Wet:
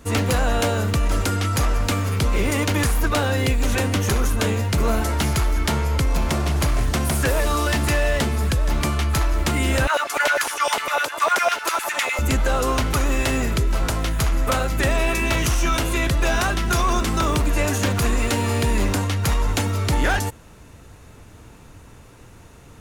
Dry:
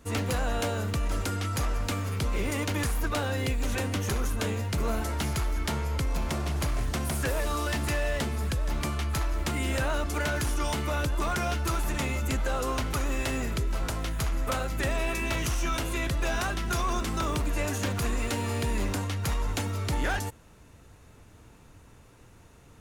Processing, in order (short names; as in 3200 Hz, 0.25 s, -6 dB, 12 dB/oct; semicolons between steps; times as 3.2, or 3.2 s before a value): 9.87–12.19 LFO high-pass saw down 9.9 Hz 490–2500 Hz; gain +8.5 dB